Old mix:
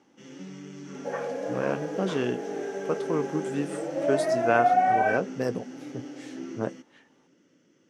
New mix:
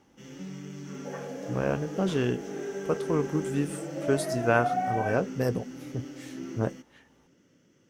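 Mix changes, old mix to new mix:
first sound: add bell 310 Hz -3.5 dB 0.34 oct; second sound -7.5 dB; master: remove BPF 180–7900 Hz

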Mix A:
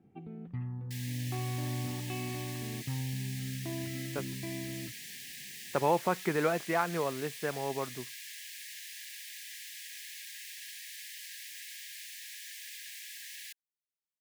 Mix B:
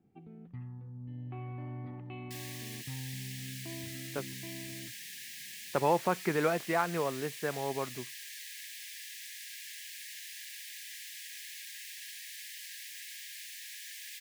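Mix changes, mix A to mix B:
first sound -6.0 dB; second sound: entry +1.40 s

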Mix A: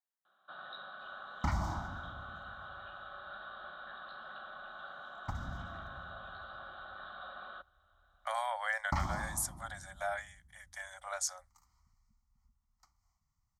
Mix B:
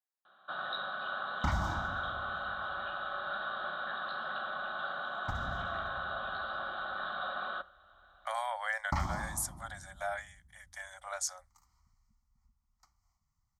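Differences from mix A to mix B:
first sound +8.5 dB; reverb: on, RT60 0.50 s

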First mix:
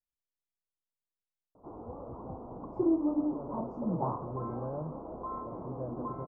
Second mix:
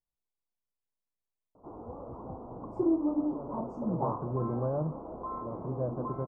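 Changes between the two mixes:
speech +6.5 dB; master: remove air absorption 160 m

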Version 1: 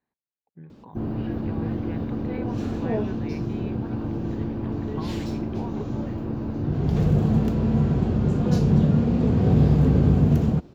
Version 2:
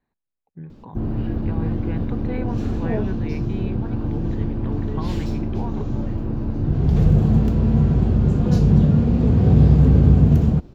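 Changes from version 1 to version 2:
speech +4.5 dB; master: remove HPF 170 Hz 6 dB/oct

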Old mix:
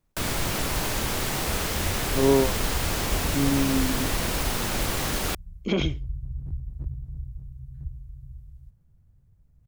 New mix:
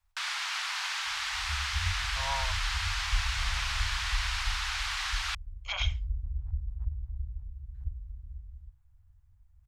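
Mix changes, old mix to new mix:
first sound: add Butterworth band-pass 2500 Hz, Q 0.6; second sound: add air absorption 240 m; master: add inverse Chebyshev band-stop 170–430 Hz, stop band 50 dB

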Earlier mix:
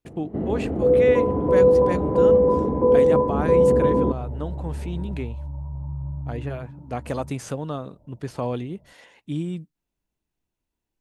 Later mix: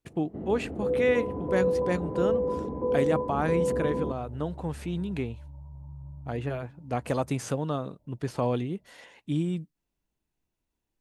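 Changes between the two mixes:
first sound -10.5 dB; second sound -12.0 dB

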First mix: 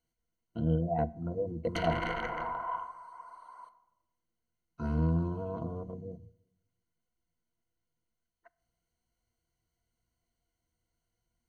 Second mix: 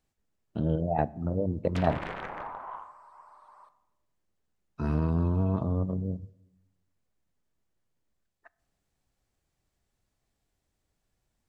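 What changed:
speech +7.5 dB; master: remove ripple EQ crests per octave 1.9, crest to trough 16 dB

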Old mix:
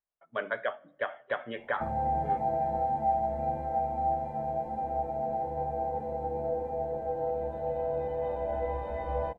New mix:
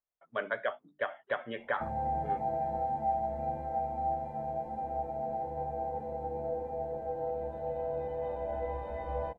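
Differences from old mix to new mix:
background -3.5 dB; reverb: off

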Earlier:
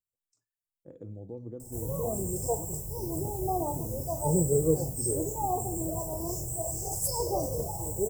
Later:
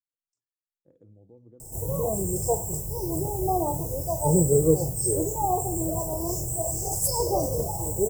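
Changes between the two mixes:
speech -11.5 dB; background +5.0 dB

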